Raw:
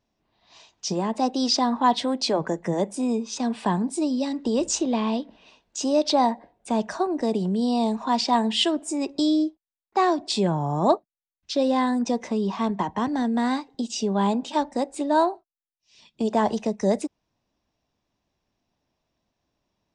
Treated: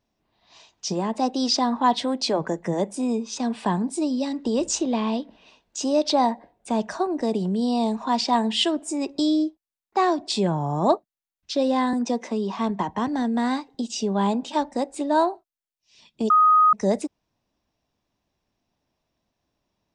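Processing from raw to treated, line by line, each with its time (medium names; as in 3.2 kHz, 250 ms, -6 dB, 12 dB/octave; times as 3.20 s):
11.93–12.57 s: steep high-pass 200 Hz
16.30–16.73 s: bleep 1.25 kHz -12.5 dBFS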